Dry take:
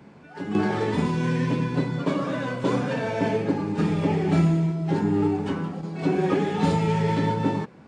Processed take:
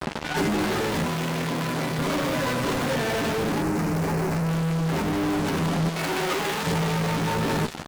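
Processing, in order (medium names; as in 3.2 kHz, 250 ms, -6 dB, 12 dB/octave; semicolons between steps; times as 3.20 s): feedback echo behind a high-pass 86 ms, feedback 60%, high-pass 3.2 kHz, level -8 dB; fuzz box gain 46 dB, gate -44 dBFS; peak limiter -18.5 dBFS, peak gain reduction 7.5 dB; doubling 13 ms -7 dB; overload inside the chain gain 18.5 dB; 5.89–6.67 s: bass shelf 400 Hz -11 dB; gain riding 0.5 s; 1.05–1.99 s: high-pass 190 Hz 6 dB/octave; 3.62–4.49 s: peaking EQ 3.4 kHz -11 dB 0.6 oct; trim -3.5 dB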